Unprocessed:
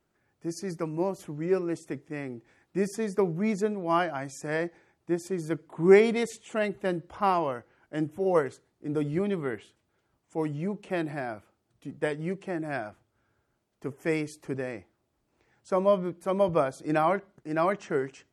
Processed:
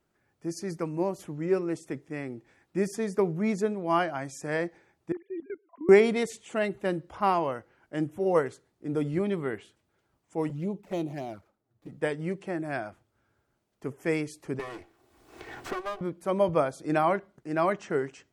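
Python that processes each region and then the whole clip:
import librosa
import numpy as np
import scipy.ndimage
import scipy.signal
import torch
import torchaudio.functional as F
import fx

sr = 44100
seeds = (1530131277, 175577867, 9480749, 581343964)

y = fx.chain(x, sr, fx.sine_speech(),
    fx.level_steps(step_db=17), at=(5.12, 5.89))
y = fx.chain(y, sr, fx.median_filter(points=15),
    fx.high_shelf(hz=8900.0, db=3.5),
    fx.env_flanger(rest_ms=11.0, full_db=-29.0), at=(10.49, 11.92))
y = fx.chain(y, sr, fx.lower_of_two(delay_ms=2.7),
    fx.low_shelf(hz=110.0, db=-9.5),
    fx.band_squash(depth_pct=100), at=(14.59, 16.01))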